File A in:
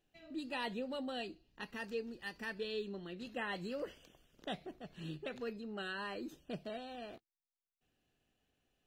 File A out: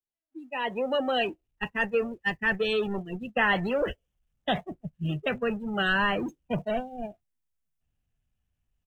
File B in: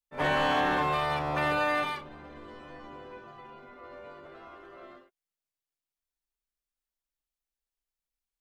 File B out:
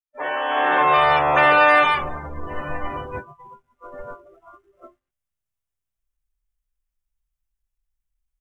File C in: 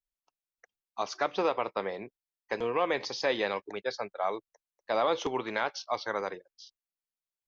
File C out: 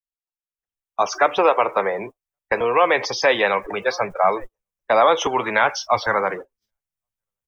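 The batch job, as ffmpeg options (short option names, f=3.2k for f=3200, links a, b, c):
-filter_complex "[0:a]aeval=exprs='val(0)+0.5*0.00944*sgn(val(0))':c=same,aecho=1:1:1124:0.0794,agate=range=-30dB:threshold=-40dB:ratio=16:detection=peak,acrossover=split=320|380|2400[a][b][c][d];[a]acompressor=threshold=-52dB:ratio=16[e];[e][b][c][d]amix=inputs=4:normalize=0,equalizer=f=4.3k:w=2.8:g=-8.5,dynaudnorm=f=480:g=3:m=15.5dB,afftdn=nr=27:nf=-31,asubboost=boost=10.5:cutoff=110"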